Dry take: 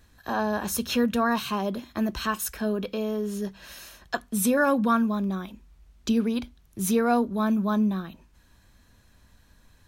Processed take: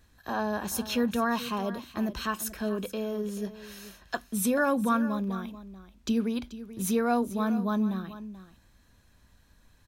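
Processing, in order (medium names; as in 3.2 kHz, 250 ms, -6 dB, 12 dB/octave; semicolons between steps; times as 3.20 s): delay 434 ms -14.5 dB; trim -3.5 dB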